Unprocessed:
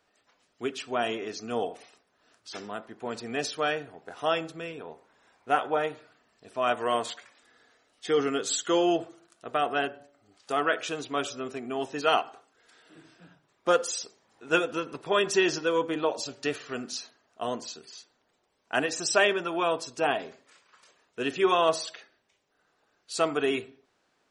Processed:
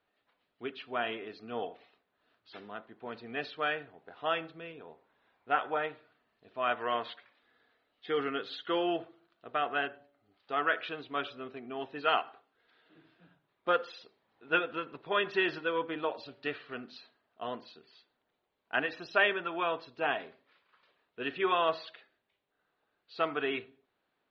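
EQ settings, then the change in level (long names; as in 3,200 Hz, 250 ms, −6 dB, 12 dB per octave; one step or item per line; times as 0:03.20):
Butterworth low-pass 4,200 Hz 48 dB per octave
dynamic equaliser 1,700 Hz, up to +7 dB, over −40 dBFS, Q 0.78
−8.0 dB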